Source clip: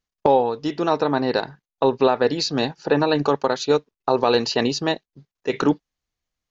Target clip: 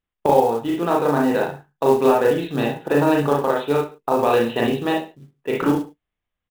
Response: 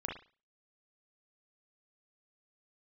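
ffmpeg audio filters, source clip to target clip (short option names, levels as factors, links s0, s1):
-filter_complex "[0:a]aresample=8000,aresample=44100[s0];[1:a]atrim=start_sample=2205,afade=t=out:st=0.27:d=0.01,atrim=end_sample=12348[s1];[s0][s1]afir=irnorm=-1:irlink=0,acrusher=bits=6:mode=log:mix=0:aa=0.000001"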